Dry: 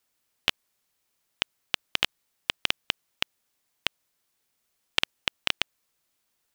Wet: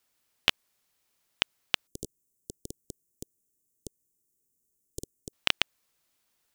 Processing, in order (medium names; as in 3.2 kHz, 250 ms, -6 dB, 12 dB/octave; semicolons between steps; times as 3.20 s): 1.87–5.33 s: elliptic band-stop 410–7000 Hz, stop band 80 dB; trim +1 dB